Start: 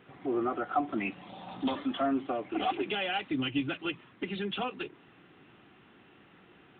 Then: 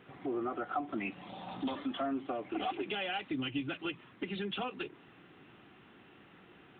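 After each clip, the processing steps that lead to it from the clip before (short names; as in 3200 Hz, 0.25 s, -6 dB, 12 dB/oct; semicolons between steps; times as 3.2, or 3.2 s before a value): compressor 2:1, threshold -36 dBFS, peak gain reduction 7.5 dB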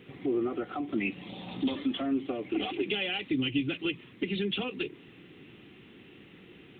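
band shelf 1000 Hz -10.5 dB; gain +7 dB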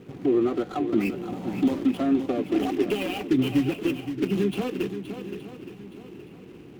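median filter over 25 samples; swung echo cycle 0.869 s, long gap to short 1.5:1, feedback 31%, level -10 dB; ending taper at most 420 dB/s; gain +7.5 dB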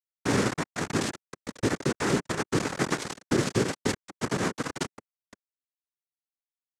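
echo 71 ms -13 dB; bit-crush 4-bit; noise vocoder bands 3; gain -4.5 dB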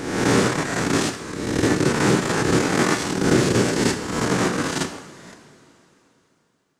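spectral swells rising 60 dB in 1.13 s; two-slope reverb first 0.69 s, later 3.5 s, from -15 dB, DRR 6 dB; gain +3.5 dB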